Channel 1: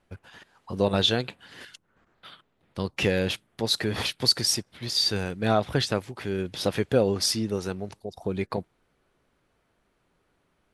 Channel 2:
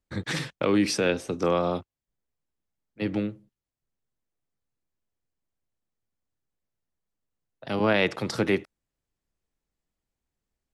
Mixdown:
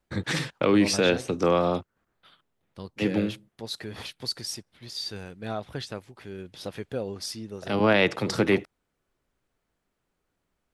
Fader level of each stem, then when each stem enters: −10.0, +2.0 decibels; 0.00, 0.00 seconds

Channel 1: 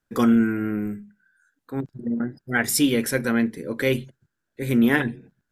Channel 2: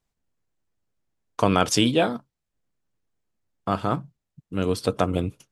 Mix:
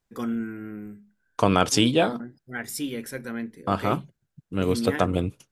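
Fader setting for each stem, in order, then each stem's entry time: −11.0, 0.0 decibels; 0.00, 0.00 seconds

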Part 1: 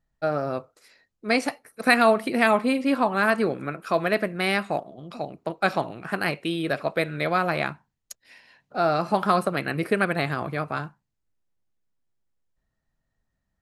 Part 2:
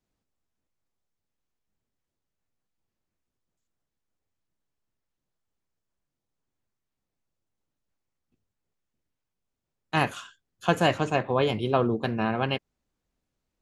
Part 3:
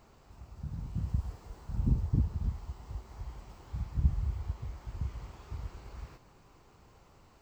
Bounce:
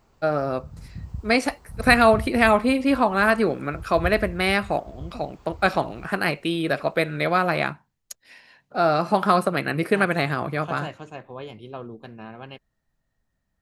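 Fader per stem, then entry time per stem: +2.5, −13.0, −2.0 decibels; 0.00, 0.00, 0.00 seconds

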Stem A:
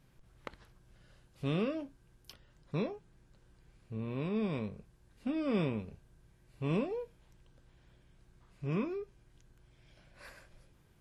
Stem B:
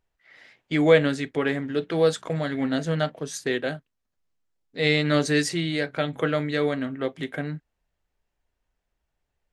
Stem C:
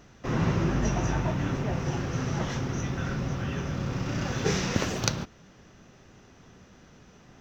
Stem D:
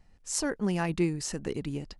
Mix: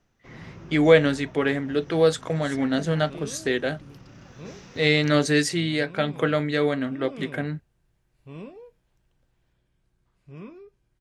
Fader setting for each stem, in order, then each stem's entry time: −7.5, +1.5, −17.5, −15.0 decibels; 1.65, 0.00, 0.00, 2.15 seconds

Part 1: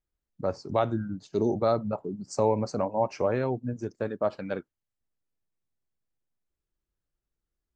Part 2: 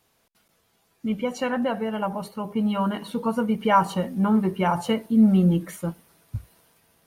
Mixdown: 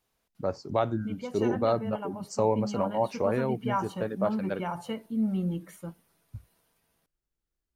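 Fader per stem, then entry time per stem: −1.0, −11.0 decibels; 0.00, 0.00 seconds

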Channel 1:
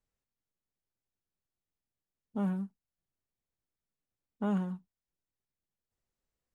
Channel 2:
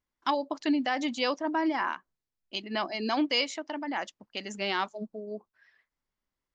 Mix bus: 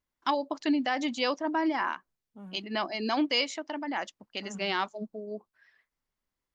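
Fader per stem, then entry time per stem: −14.5, 0.0 decibels; 0.00, 0.00 seconds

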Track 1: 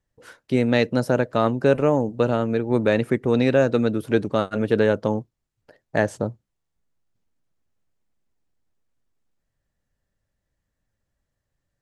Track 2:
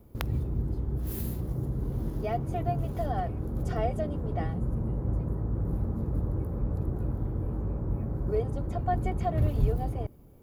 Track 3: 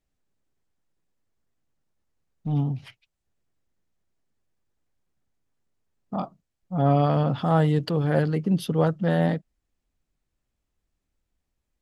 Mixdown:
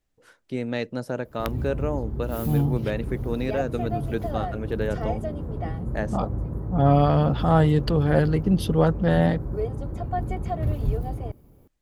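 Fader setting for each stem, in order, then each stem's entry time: −9.0, +0.5, +2.0 decibels; 0.00, 1.25, 0.00 seconds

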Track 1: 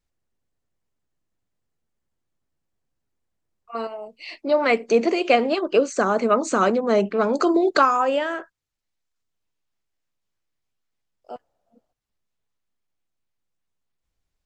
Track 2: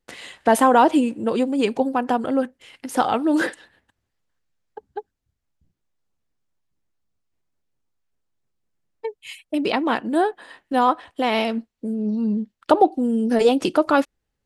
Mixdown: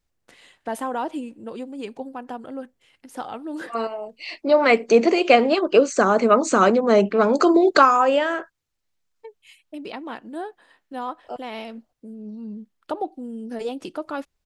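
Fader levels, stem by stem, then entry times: +3.0, −12.5 decibels; 0.00, 0.20 seconds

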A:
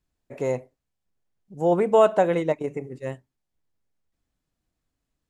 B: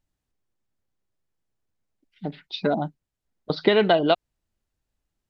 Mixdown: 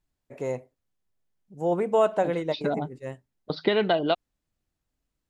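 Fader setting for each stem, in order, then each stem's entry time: −4.5, −4.5 decibels; 0.00, 0.00 seconds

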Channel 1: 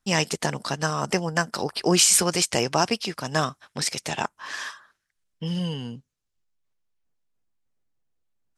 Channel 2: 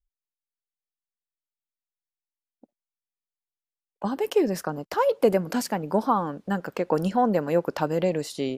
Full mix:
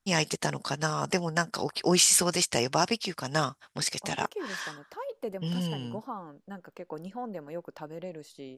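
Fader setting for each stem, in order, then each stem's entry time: −3.5, −15.5 decibels; 0.00, 0.00 seconds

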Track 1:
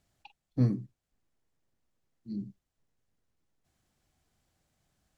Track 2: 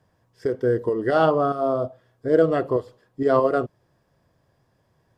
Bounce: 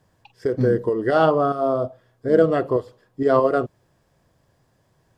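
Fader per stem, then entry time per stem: +3.0, +1.5 decibels; 0.00, 0.00 seconds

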